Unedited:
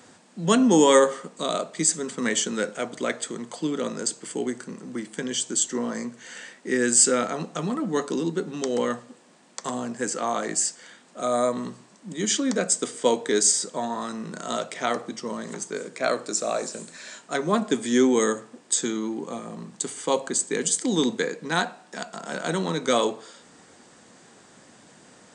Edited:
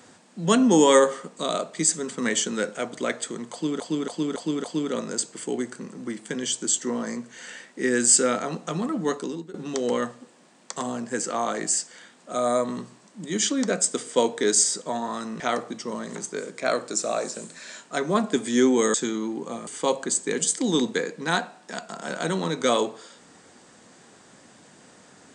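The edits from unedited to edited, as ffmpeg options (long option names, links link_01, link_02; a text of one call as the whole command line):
ffmpeg -i in.wav -filter_complex "[0:a]asplit=9[link_01][link_02][link_03][link_04][link_05][link_06][link_07][link_08][link_09];[link_01]atrim=end=3.802[link_10];[link_02]atrim=start=3.518:end=3.802[link_11];[link_03]atrim=start=3.518:end=3.802[link_12];[link_04]atrim=start=3.518:end=3.802[link_13];[link_05]atrim=start=3.518:end=8.42,asetpts=PTS-STARTPTS,afade=type=out:start_time=4.432:duration=0.47:silence=0.105925[link_14];[link_06]atrim=start=8.42:end=14.282,asetpts=PTS-STARTPTS,afade=type=in:duration=0.004:curve=hsin:silence=0.105925[link_15];[link_07]atrim=start=14.778:end=18.322[link_16];[link_08]atrim=start=18.748:end=19.482[link_17];[link_09]atrim=start=19.908[link_18];[link_10][link_11]acrossfade=duration=0.004:curve1=hsin:curve2=hsin[link_19];[link_19][link_12]acrossfade=duration=0.004:curve1=hsin:curve2=hsin[link_20];[link_20][link_13]acrossfade=duration=0.004:curve1=hsin:curve2=hsin[link_21];[link_14][link_15]concat=n=2:v=0:a=1[link_22];[link_21][link_22]acrossfade=duration=0.004:curve1=hsin:curve2=hsin[link_23];[link_23][link_16]acrossfade=duration=0.004:curve1=hsin:curve2=hsin[link_24];[link_24][link_17]acrossfade=duration=0.004:curve1=hsin:curve2=hsin[link_25];[link_25][link_18]acrossfade=duration=0.004:curve1=hsin:curve2=hsin" out.wav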